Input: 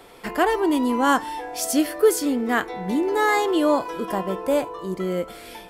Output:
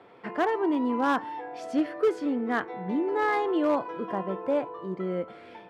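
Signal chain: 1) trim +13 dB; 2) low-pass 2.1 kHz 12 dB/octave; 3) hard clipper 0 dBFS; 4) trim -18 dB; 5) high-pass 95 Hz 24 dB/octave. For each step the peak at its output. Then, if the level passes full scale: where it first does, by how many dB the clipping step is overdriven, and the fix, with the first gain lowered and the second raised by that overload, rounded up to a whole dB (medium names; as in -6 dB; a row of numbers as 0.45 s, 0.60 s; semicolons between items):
+6.0 dBFS, +6.0 dBFS, 0.0 dBFS, -18.0 dBFS, -14.5 dBFS; step 1, 6.0 dB; step 1 +7 dB, step 4 -12 dB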